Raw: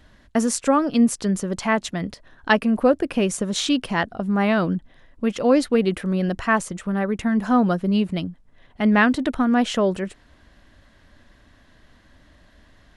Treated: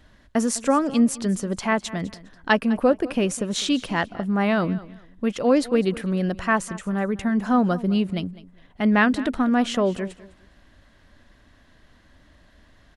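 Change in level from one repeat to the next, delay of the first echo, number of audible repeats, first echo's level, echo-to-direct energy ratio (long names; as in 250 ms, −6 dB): −12.0 dB, 204 ms, 2, −18.5 dB, −18.0 dB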